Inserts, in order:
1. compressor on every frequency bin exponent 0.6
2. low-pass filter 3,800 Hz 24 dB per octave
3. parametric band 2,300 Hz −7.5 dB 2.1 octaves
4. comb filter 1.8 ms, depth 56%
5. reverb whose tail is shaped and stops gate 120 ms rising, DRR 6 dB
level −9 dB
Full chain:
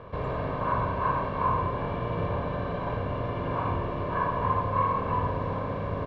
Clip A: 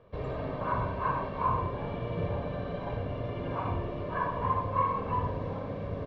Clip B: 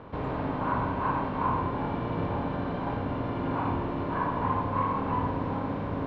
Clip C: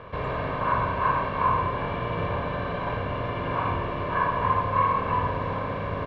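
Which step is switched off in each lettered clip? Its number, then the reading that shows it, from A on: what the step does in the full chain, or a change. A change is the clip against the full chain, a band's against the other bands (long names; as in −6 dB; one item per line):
1, change in momentary loudness spread +1 LU
4, 250 Hz band +6.0 dB
3, 4 kHz band +5.5 dB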